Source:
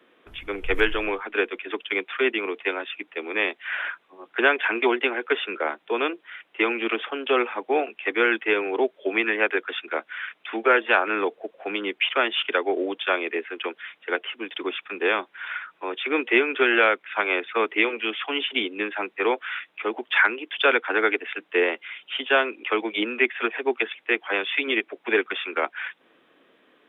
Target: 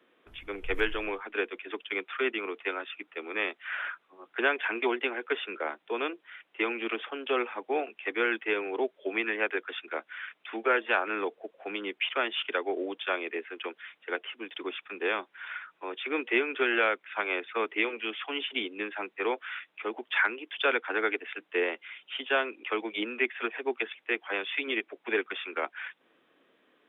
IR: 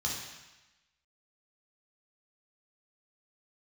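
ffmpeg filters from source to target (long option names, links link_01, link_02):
-filter_complex "[0:a]asettb=1/sr,asplit=3[link_01][link_02][link_03];[link_01]atrim=end=1.934[link_04];[link_02]atrim=start=1.93:end=4.3,asetpts=PTS-STARTPTS,afade=type=in:duration=0.004:curve=qsin,afade=type=out:start_time=2.366:duration=0.004:curve=qsin,equalizer=frequency=1300:width=5:gain=6[link_05];[link_03]atrim=start=4.296[link_06];[link_04][link_05]acrossfade=duration=0.004:curve1=hsin:curve2=qsin[link_07];[link_07][link_06]acrossfade=duration=0.004:curve1=qsin:curve2=hsin,volume=-7dB"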